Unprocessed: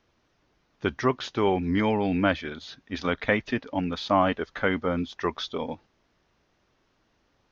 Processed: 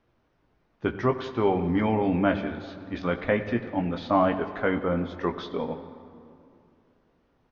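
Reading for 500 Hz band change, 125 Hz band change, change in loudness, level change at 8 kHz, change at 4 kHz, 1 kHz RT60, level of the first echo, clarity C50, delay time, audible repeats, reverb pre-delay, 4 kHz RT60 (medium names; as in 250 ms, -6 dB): +1.0 dB, +1.5 dB, 0.0 dB, no reading, -7.5 dB, 2.5 s, -21.0 dB, 11.0 dB, 184 ms, 1, 17 ms, 1.6 s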